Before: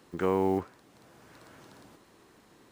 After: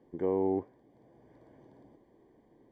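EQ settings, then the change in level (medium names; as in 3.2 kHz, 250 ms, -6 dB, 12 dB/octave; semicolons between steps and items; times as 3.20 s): boxcar filter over 33 samples; peaking EQ 84 Hz -8.5 dB 0.53 oct; peaking EQ 180 Hz -7 dB 0.38 oct; 0.0 dB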